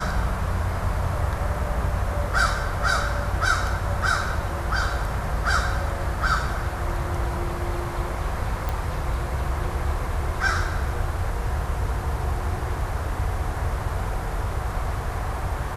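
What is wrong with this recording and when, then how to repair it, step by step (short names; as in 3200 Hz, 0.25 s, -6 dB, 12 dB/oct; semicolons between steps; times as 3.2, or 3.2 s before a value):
8.69 pop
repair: de-click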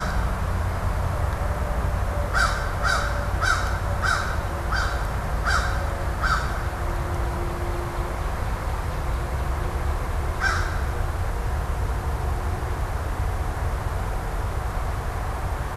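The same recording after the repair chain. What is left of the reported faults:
none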